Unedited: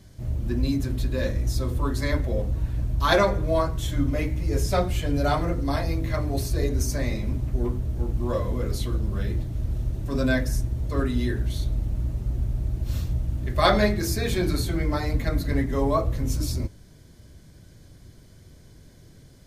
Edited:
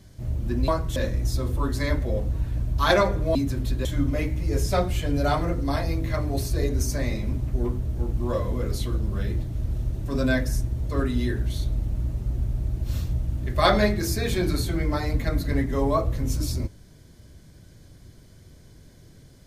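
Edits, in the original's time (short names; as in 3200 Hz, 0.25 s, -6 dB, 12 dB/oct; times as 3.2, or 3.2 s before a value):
0.68–1.18 swap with 3.57–3.85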